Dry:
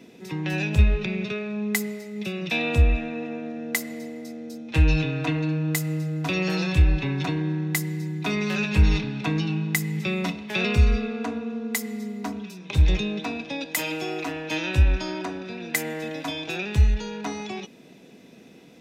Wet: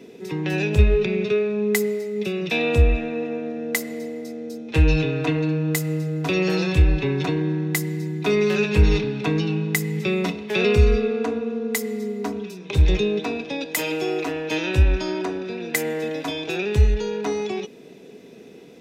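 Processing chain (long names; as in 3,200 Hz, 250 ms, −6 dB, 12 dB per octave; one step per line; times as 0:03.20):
parametric band 420 Hz +11.5 dB 0.39 octaves
level +1.5 dB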